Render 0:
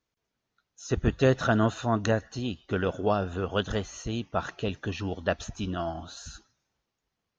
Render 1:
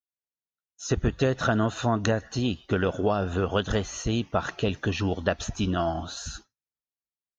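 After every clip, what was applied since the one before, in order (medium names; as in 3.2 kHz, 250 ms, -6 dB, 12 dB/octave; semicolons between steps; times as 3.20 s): expander -46 dBFS; compression 5:1, threshold -27 dBFS, peak gain reduction 10 dB; trim +6.5 dB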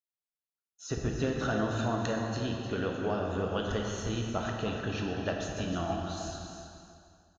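on a send: feedback delay 307 ms, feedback 25%, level -9 dB; on the sum: plate-style reverb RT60 2.4 s, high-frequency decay 0.75×, DRR 0.5 dB; trim -9 dB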